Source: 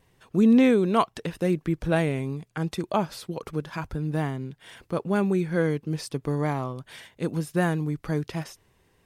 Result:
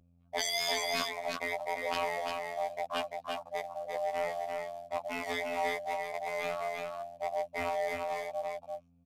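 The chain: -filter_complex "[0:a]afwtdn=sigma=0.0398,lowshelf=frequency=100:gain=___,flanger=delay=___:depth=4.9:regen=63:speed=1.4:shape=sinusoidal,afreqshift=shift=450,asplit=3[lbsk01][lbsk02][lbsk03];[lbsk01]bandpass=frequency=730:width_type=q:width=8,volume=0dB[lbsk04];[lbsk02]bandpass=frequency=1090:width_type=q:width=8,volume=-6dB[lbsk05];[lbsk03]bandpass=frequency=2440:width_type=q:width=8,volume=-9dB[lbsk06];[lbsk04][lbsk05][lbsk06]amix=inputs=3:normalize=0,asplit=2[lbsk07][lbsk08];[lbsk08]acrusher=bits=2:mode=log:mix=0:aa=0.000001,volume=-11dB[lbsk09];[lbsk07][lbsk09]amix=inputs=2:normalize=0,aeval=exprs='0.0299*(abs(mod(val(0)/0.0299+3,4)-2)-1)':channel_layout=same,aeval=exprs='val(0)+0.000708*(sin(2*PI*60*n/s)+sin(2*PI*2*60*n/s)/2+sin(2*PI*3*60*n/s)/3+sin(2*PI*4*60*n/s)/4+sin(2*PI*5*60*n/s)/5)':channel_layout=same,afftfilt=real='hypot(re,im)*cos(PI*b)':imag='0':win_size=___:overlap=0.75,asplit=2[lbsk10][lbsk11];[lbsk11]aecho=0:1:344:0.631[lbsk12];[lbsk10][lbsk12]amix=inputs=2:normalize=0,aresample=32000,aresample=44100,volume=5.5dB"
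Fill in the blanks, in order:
10.5, 0.3, 2048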